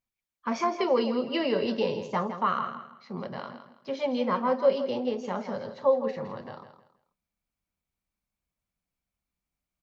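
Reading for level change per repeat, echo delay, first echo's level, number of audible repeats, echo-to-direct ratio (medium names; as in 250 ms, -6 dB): -11.0 dB, 163 ms, -10.5 dB, 3, -10.0 dB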